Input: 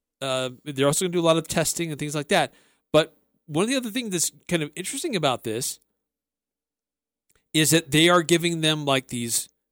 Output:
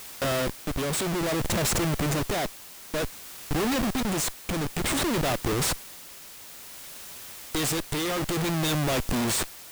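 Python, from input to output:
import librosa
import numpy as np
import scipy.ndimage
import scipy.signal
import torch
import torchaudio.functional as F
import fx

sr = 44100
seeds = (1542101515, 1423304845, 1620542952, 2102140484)

y = fx.schmitt(x, sr, flips_db=-31.0)
y = fx.dmg_noise_colour(y, sr, seeds[0], colour='white', level_db=-42.0)
y = y * (1.0 - 0.29 / 2.0 + 0.29 / 2.0 * np.cos(2.0 * np.pi * 0.56 * (np.arange(len(y)) / sr)))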